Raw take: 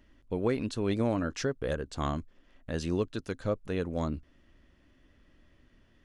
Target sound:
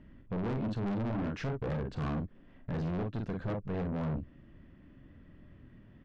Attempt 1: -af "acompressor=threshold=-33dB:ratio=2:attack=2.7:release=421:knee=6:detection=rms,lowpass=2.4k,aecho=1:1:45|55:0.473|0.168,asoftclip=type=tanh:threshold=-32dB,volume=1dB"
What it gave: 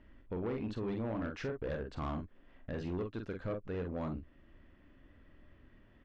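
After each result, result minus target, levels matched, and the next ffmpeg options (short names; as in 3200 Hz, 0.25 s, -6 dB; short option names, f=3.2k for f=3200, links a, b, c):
compressor: peak gain reduction +3.5 dB; 125 Hz band -3.5 dB
-af "acompressor=threshold=-26dB:ratio=2:attack=2.7:release=421:knee=6:detection=rms,lowpass=2.4k,aecho=1:1:45|55:0.473|0.168,asoftclip=type=tanh:threshold=-32dB,volume=1dB"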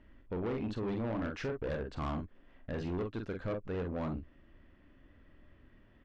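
125 Hz band -3.5 dB
-af "acompressor=threshold=-26dB:ratio=2:attack=2.7:release=421:knee=6:detection=rms,lowpass=2.4k,equalizer=f=150:t=o:w=1.7:g=13,aecho=1:1:45|55:0.473|0.168,asoftclip=type=tanh:threshold=-32dB,volume=1dB"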